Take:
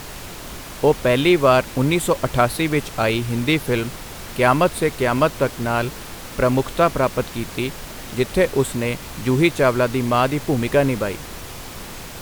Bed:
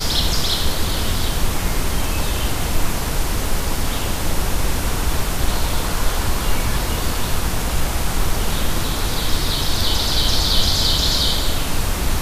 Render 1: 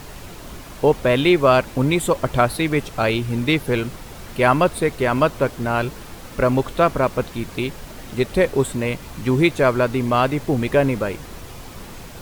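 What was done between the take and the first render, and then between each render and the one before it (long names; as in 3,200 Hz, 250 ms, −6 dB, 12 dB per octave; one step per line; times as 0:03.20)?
broadband denoise 6 dB, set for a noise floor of −35 dBFS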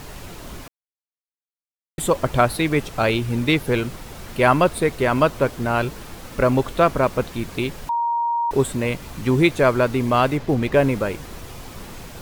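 0:00.68–0:01.98: silence
0:07.89–0:08.51: beep over 939 Hz −18.5 dBFS
0:10.37–0:10.77: running median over 5 samples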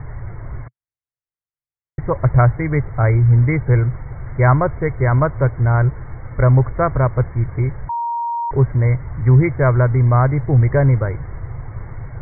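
Chebyshev low-pass filter 2,200 Hz, order 10
low shelf with overshoot 160 Hz +9 dB, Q 3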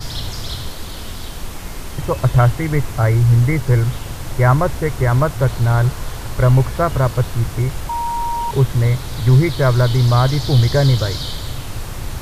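mix in bed −9 dB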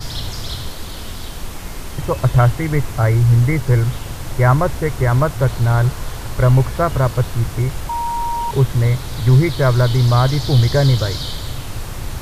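no processing that can be heard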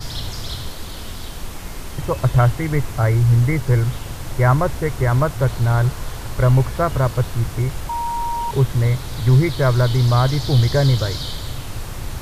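level −2 dB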